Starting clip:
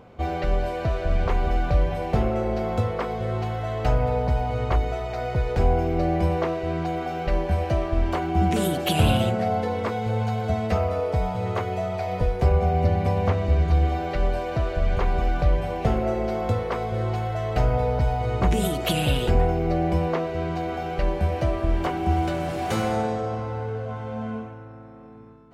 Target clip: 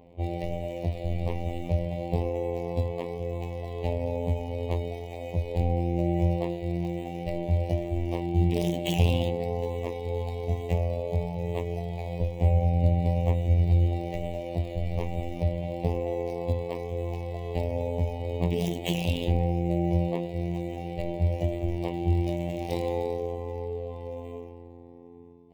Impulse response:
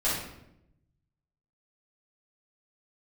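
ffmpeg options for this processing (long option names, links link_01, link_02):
-filter_complex "[0:a]afftfilt=real='hypot(re,im)*cos(PI*b)':imag='0':win_size=2048:overlap=0.75,acrossover=split=3500[link_01][link_02];[link_02]acrusher=samples=12:mix=1:aa=0.000001:lfo=1:lforange=7.2:lforate=1.1[link_03];[link_01][link_03]amix=inputs=2:normalize=0,asuperstop=centerf=1400:order=4:qfactor=0.96,adynamicequalizer=threshold=0.00224:dfrequency=2900:dqfactor=0.7:tfrequency=2900:tqfactor=0.7:attack=5:release=100:ratio=0.375:range=2:mode=boostabove:tftype=highshelf"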